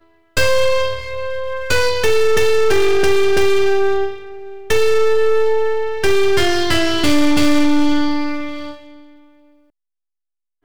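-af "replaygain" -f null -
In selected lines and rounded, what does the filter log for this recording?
track_gain = -1.2 dB
track_peak = 0.283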